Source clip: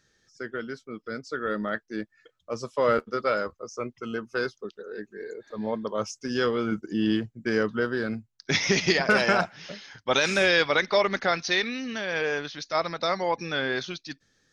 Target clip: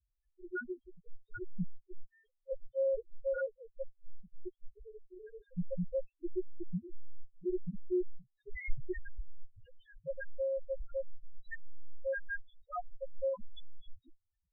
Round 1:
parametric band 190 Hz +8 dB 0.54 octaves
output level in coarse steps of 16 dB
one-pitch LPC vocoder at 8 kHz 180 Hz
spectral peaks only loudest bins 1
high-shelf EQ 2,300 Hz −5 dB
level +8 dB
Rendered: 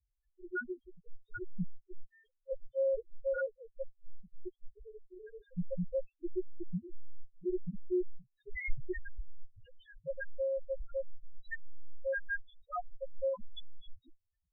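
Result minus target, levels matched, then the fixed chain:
4,000 Hz band +5.5 dB
parametric band 190 Hz +8 dB 0.54 octaves
output level in coarse steps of 16 dB
one-pitch LPC vocoder at 8 kHz 180 Hz
spectral peaks only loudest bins 1
high-shelf EQ 2,300 Hz −14 dB
level +8 dB

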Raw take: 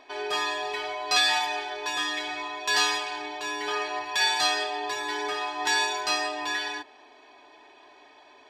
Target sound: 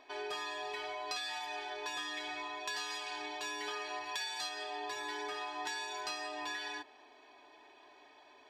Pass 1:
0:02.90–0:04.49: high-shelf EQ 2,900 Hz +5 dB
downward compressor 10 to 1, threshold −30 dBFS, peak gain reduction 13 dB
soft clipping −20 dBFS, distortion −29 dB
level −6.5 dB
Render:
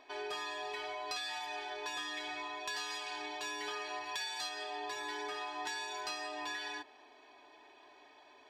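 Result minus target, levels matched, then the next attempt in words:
soft clipping: distortion +14 dB
0:02.90–0:04.49: high-shelf EQ 2,900 Hz +5 dB
downward compressor 10 to 1, threshold −30 dBFS, peak gain reduction 13 dB
soft clipping −12 dBFS, distortion −43 dB
level −6.5 dB

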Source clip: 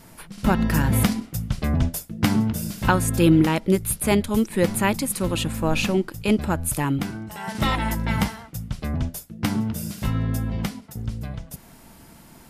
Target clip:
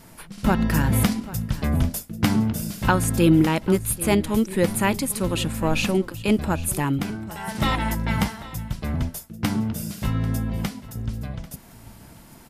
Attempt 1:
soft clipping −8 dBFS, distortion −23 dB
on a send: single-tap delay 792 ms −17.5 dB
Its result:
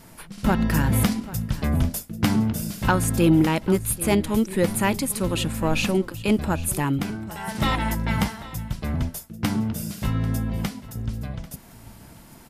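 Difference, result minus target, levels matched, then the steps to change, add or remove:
soft clipping: distortion +11 dB
change: soft clipping −1.5 dBFS, distortion −34 dB

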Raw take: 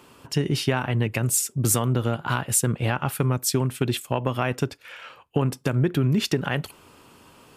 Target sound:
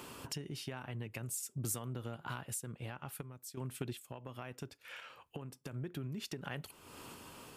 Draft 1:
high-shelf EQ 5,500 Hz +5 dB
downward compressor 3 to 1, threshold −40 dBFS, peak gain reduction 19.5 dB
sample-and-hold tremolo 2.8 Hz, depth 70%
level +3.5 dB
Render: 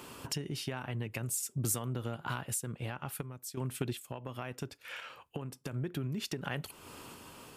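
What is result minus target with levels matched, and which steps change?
downward compressor: peak gain reduction −5.5 dB
change: downward compressor 3 to 1, threshold −48 dBFS, peak gain reduction 24.5 dB

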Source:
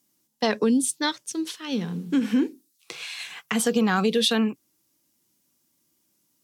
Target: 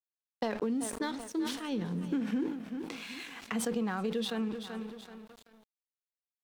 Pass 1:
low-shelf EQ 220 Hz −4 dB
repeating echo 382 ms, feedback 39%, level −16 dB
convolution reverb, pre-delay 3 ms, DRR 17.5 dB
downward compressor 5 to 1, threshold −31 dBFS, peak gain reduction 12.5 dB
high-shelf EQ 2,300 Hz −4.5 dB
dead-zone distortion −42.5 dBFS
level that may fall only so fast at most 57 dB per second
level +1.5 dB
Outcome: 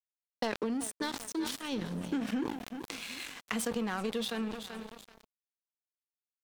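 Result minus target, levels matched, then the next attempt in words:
dead-zone distortion: distortion +10 dB; 4,000 Hz band +3.0 dB
low-shelf EQ 220 Hz −4 dB
repeating echo 382 ms, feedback 39%, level −16 dB
convolution reverb, pre-delay 3 ms, DRR 17.5 dB
downward compressor 5 to 1, threshold −31 dBFS, peak gain reduction 12.5 dB
high-shelf EQ 2,300 Hz −13 dB
dead-zone distortion −54.5 dBFS
level that may fall only so fast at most 57 dB per second
level +1.5 dB

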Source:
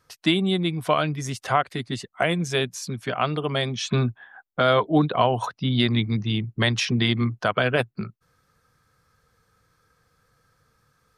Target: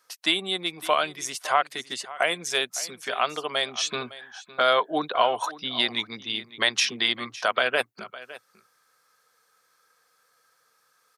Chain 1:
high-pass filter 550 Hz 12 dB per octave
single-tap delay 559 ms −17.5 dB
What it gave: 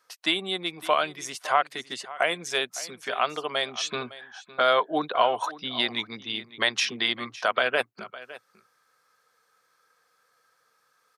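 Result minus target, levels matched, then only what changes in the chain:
8,000 Hz band −3.5 dB
add after high-pass filter: high-shelf EQ 4,600 Hz +6.5 dB

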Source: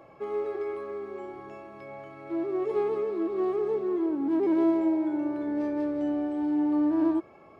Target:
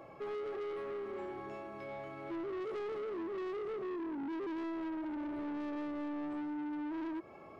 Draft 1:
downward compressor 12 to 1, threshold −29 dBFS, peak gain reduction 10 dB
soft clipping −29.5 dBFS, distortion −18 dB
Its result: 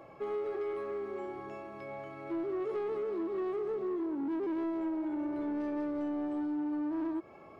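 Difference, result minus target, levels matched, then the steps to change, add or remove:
soft clipping: distortion −8 dB
change: soft clipping −37.5 dBFS, distortion −10 dB

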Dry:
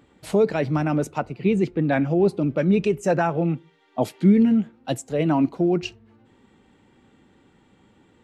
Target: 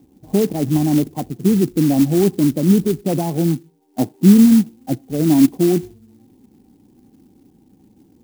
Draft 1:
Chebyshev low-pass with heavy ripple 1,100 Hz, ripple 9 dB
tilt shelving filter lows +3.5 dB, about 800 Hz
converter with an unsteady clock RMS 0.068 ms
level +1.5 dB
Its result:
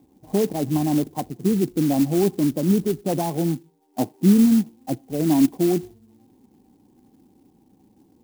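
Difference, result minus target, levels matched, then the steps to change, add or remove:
1,000 Hz band +5.0 dB
change: tilt shelving filter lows +10.5 dB, about 800 Hz

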